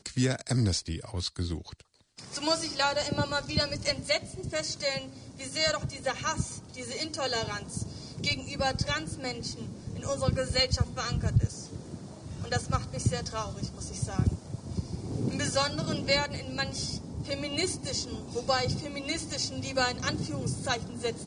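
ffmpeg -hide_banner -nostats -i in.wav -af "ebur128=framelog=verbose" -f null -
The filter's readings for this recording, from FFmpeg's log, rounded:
Integrated loudness:
  I:         -30.9 LUFS
  Threshold: -41.2 LUFS
Loudness range:
  LRA:         2.5 LU
  Threshold: -51.2 LUFS
  LRA low:   -32.6 LUFS
  LRA high:  -30.0 LUFS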